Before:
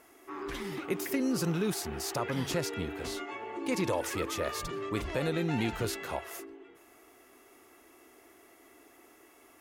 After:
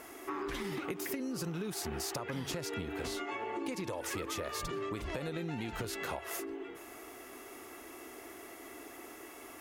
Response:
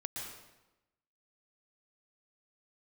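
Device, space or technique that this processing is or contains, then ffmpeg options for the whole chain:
serial compression, leveller first: -af "acompressor=threshold=-33dB:ratio=6,acompressor=threshold=-45dB:ratio=5,volume=9dB"

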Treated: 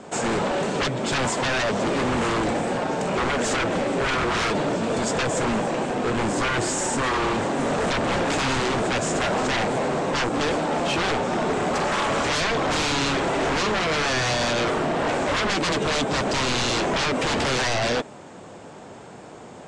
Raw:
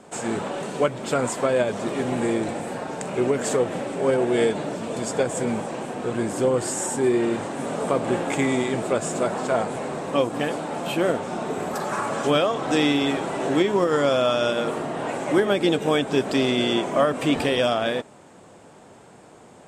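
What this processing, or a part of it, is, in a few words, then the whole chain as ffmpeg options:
synthesiser wavefolder: -af "aeval=exprs='0.0596*(abs(mod(val(0)/0.0596+3,4)-2)-1)':c=same,lowpass=f=7.6k:w=0.5412,lowpass=f=7.6k:w=1.3066,volume=6.5dB"

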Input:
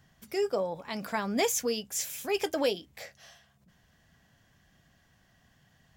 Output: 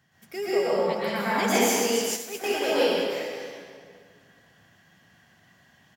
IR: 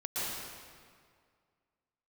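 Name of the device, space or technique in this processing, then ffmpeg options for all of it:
PA in a hall: -filter_complex "[0:a]highpass=120,equalizer=f=2k:t=o:w=1.3:g=4,aecho=1:1:122:0.299[a];[1:a]atrim=start_sample=2205[b];[a][b]afir=irnorm=-1:irlink=0,asplit=3[c][d][e];[c]afade=t=out:st=2.15:d=0.02[f];[d]agate=range=-33dB:threshold=-22dB:ratio=3:detection=peak,afade=t=in:st=2.15:d=0.02,afade=t=out:st=2.67:d=0.02[g];[e]afade=t=in:st=2.67:d=0.02[h];[f][g][h]amix=inputs=3:normalize=0"

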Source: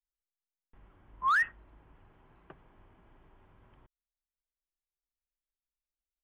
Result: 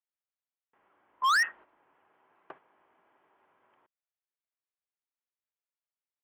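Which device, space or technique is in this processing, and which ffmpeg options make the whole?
walkie-talkie: -af "highpass=510,lowpass=2.7k,asoftclip=type=hard:threshold=-31dB,agate=range=-9dB:threshold=-59dB:ratio=16:detection=peak,volume=8.5dB"

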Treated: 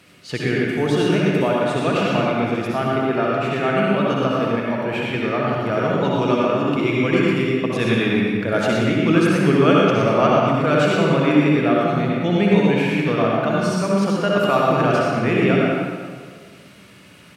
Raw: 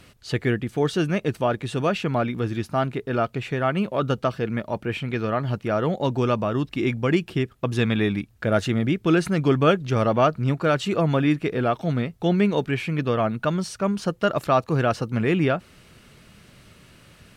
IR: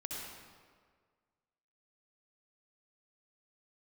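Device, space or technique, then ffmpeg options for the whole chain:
PA in a hall: -filter_complex "[0:a]highpass=140,equalizer=f=2.3k:t=o:w=0.47:g=3.5,aecho=1:1:121:0.398[a];[1:a]atrim=start_sample=2205[b];[a][b]afir=irnorm=-1:irlink=0,volume=4dB"

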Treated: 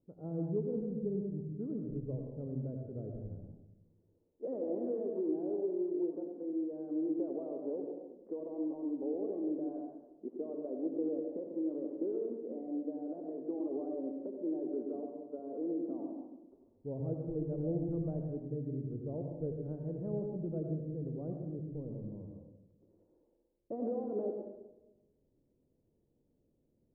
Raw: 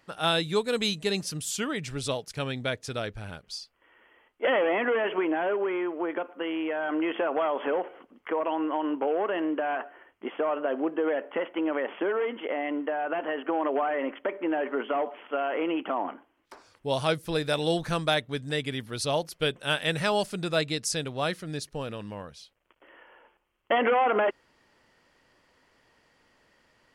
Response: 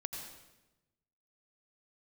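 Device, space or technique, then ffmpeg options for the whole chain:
next room: -filter_complex "[0:a]asettb=1/sr,asplit=3[a][b][c];[a]atrim=end=15.394[d];[b]atrim=start=15.39:end=15.95,asetpts=PTS-STARTPTS,afade=t=in:d=0.004:c=qsin,afade=t=out:st=0.556:d=0.004:c=qsin,highpass=f=110:w=0.5412,highpass=f=110:w=1.3066[e];[c]atrim=start=15.946[f];[d][e]acrossfade=d=0.004:c1=hsin:c2=qsin[g];[g][f]acrossfade=d=0.004:c1=qsin:c2=hsin,lowpass=f=430:w=0.5412,lowpass=f=430:w=1.3066[h];[1:a]atrim=start_sample=2205[i];[h][i]afir=irnorm=-1:irlink=0,volume=-4dB"

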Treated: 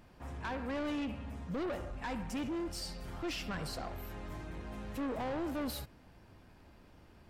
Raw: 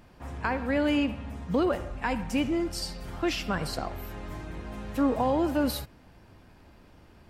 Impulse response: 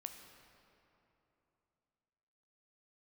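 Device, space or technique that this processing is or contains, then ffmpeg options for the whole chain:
saturation between pre-emphasis and de-emphasis: -af "highshelf=f=9.2k:g=10,asoftclip=type=tanh:threshold=-29dB,highshelf=f=9.2k:g=-10,volume=-4.5dB"

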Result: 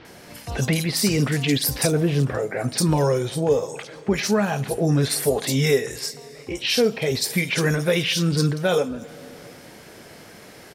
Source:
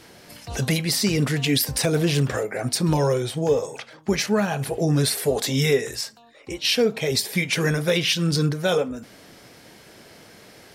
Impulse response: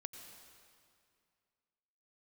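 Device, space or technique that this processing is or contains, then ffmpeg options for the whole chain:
compressed reverb return: -filter_complex "[0:a]asettb=1/sr,asplit=3[a][b][c];[a]atrim=end=1.874[d];[b]atrim=start=1.87:end=2.52,asetpts=PTS-STARTPTS,afade=t=in:d=0.004:c=qsin,afade=t=out:st=0.646:d=0.004:c=qsin,highshelf=f=2.2k:g=-10[e];[c]atrim=start=2.516[f];[d][e]acrossfade=d=0.004:c1=hsin:c2=qsin[g];[g][f]acrossfade=d=0.004:c1=qsin:c2=hsin,acrossover=split=3900[h][i];[i]adelay=50[j];[h][j]amix=inputs=2:normalize=0,asplit=2[k][l];[1:a]atrim=start_sample=2205[m];[l][m]afir=irnorm=-1:irlink=0,acompressor=threshold=-36dB:ratio=6,volume=-1dB[n];[k][n]amix=inputs=2:normalize=0"

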